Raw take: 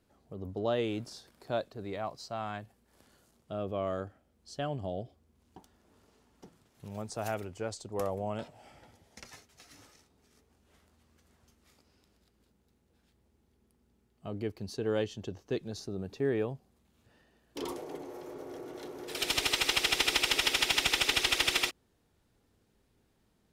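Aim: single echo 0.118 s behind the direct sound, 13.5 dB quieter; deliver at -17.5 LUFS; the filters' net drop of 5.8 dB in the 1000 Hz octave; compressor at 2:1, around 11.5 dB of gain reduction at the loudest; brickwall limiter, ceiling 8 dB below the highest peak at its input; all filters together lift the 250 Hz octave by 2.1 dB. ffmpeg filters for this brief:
-af "equalizer=f=250:t=o:g=3.5,equalizer=f=1k:t=o:g=-9,acompressor=threshold=-46dB:ratio=2,alimiter=level_in=9.5dB:limit=-24dB:level=0:latency=1,volume=-9.5dB,aecho=1:1:118:0.211,volume=28.5dB"

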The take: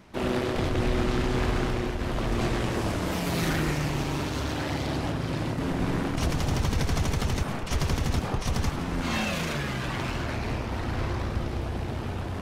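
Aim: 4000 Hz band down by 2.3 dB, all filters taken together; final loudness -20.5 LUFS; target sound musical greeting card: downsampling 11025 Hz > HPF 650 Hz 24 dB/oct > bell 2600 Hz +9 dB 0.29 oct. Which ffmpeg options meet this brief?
-af "equalizer=f=4k:t=o:g=-6,aresample=11025,aresample=44100,highpass=f=650:w=0.5412,highpass=f=650:w=1.3066,equalizer=f=2.6k:t=o:w=0.29:g=9,volume=14dB"

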